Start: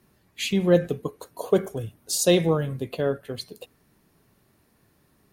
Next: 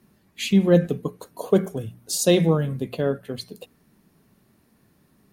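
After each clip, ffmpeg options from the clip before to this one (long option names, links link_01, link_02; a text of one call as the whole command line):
ffmpeg -i in.wav -af "equalizer=frequency=200:width_type=o:width=0.89:gain=7.5,bandreject=frequency=60:width_type=h:width=6,bandreject=frequency=120:width_type=h:width=6,bandreject=frequency=180:width_type=h:width=6" out.wav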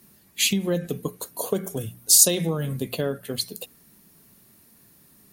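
ffmpeg -i in.wav -af "acompressor=threshold=-21dB:ratio=10,crystalizer=i=3.5:c=0" out.wav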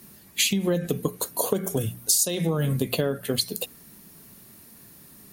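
ffmpeg -i in.wav -af "acompressor=threshold=-26dB:ratio=6,volume=6dB" out.wav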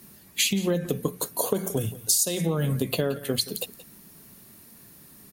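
ffmpeg -i in.wav -af "aecho=1:1:175:0.141,volume=-1dB" out.wav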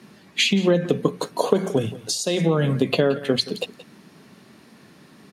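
ffmpeg -i in.wav -af "highpass=160,lowpass=3800,volume=7.5dB" out.wav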